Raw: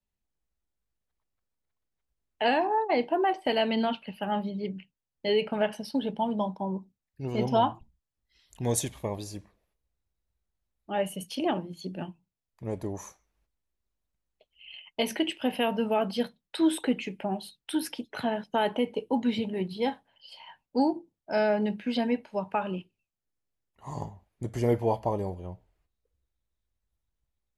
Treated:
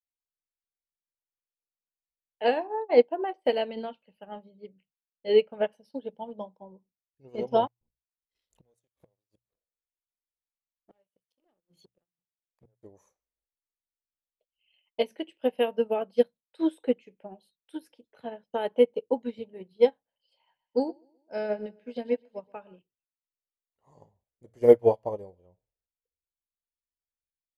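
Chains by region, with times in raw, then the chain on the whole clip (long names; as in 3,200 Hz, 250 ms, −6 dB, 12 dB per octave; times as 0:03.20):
0:07.67–0:12.83: gate with flip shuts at −29 dBFS, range −33 dB + leveller curve on the samples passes 2
0:20.35–0:22.79: dynamic equaliser 810 Hz, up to −3 dB, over −35 dBFS, Q 1.3 + repeating echo 127 ms, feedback 47%, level −14 dB
whole clip: parametric band 500 Hz +11.5 dB 0.6 octaves; mains-hum notches 60/120 Hz; expander for the loud parts 2.5 to 1, over −31 dBFS; level +3.5 dB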